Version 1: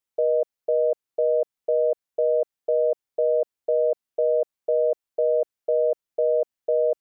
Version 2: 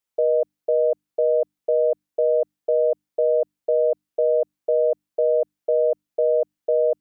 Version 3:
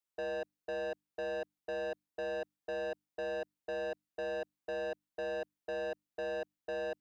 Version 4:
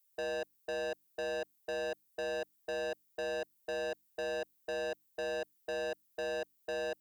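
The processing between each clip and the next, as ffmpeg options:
-af "bandreject=f=50:t=h:w=6,bandreject=f=100:t=h:w=6,bandreject=f=150:t=h:w=6,bandreject=f=200:t=h:w=6,bandreject=f=250:t=h:w=6,bandreject=f=300:t=h:w=6,volume=2dB"
-af "asoftclip=type=tanh:threshold=-27dB,volume=-8dB"
-af "aemphasis=mode=production:type=75fm,volume=1dB"

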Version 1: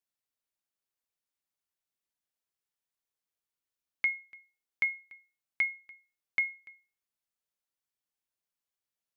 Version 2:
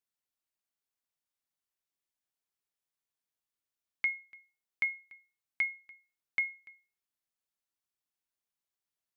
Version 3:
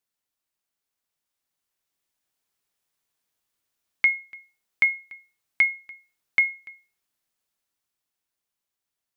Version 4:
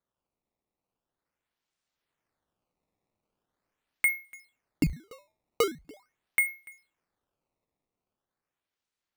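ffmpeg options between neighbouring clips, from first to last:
-af "bandreject=f=520:w=13,volume=-2dB"
-af "dynaudnorm=f=210:g=17:m=5.5dB,volume=5.5dB"
-af "acrusher=samples=16:mix=1:aa=0.000001:lfo=1:lforange=25.6:lforate=0.42,volume=-5dB"

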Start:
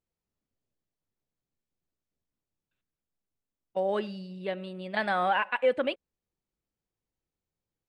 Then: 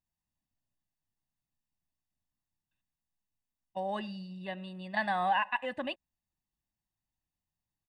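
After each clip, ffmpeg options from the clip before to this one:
-af "aecho=1:1:1.1:0.97,volume=-6dB"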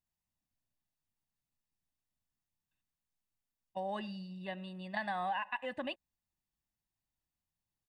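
-af "acompressor=threshold=-32dB:ratio=3,volume=-2dB"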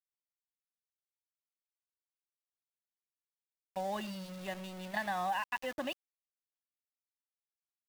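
-af "aeval=exprs='val(0)*gte(abs(val(0)),0.00562)':c=same,volume=1.5dB"

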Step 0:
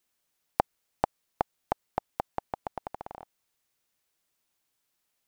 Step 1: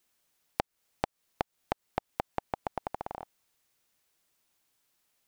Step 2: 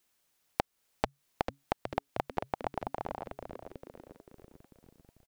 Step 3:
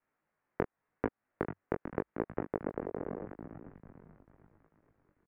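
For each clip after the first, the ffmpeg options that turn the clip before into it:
-af "acompressor=threshold=-31dB:ratio=6,volume=3.5dB"
-filter_complex "[0:a]asplit=8[a][b][c][d][e][f][g][h];[b]adelay=444,afreqshift=-140,volume=-8dB[i];[c]adelay=888,afreqshift=-280,volume=-13dB[j];[d]adelay=1332,afreqshift=-420,volume=-18.1dB[k];[e]adelay=1776,afreqshift=-560,volume=-23.1dB[l];[f]adelay=2220,afreqshift=-700,volume=-28.1dB[m];[g]adelay=2664,afreqshift=-840,volume=-33.2dB[n];[h]adelay=3108,afreqshift=-980,volume=-38.2dB[o];[a][i][j][k][l][m][n][o]amix=inputs=8:normalize=0"
-filter_complex "[0:a]flanger=delay=17:depth=5.8:speed=0.86,asplit=2[a][b];[b]adelay=19,volume=-8dB[c];[a][c]amix=inputs=2:normalize=0,highpass=f=470:t=q:w=0.5412,highpass=f=470:t=q:w=1.307,lowpass=f=2.3k:t=q:w=0.5176,lowpass=f=2.3k:t=q:w=0.7071,lowpass=f=2.3k:t=q:w=1.932,afreqshift=-370,volume=3dB"

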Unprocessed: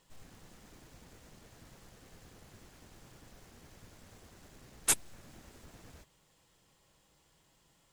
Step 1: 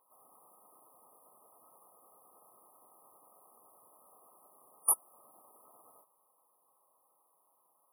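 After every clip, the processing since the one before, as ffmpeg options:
-af "highpass=920,afftfilt=real='re*(1-between(b*sr/4096,1300,9400))':imag='im*(1-between(b*sr/4096,1300,9400))':win_size=4096:overlap=0.75,volume=5.5dB"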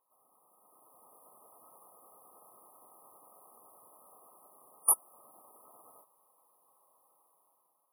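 -af "dynaudnorm=f=240:g=7:m=11dB,volume=-7.5dB"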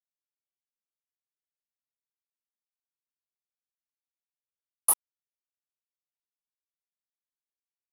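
-af "aeval=exprs='val(0)*gte(abs(val(0)),0.0355)':c=same,volume=2dB"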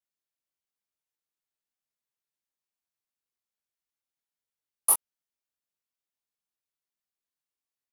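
-filter_complex "[0:a]asplit=2[a][b];[b]adelay=21,volume=-3.5dB[c];[a][c]amix=inputs=2:normalize=0"

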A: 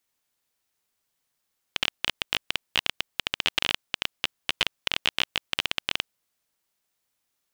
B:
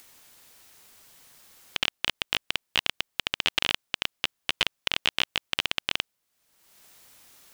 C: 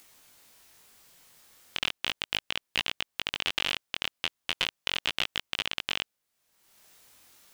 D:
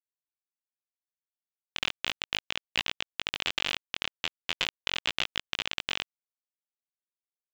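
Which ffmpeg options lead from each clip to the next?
-af "acompressor=mode=upward:threshold=-35dB:ratio=2.5"
-af "flanger=delay=18.5:depth=4.9:speed=0.36"
-af "aresample=16000,aeval=exprs='sgn(val(0))*max(abs(val(0))-0.015,0)':c=same,aresample=44100,acrusher=bits=7:mode=log:mix=0:aa=0.000001"

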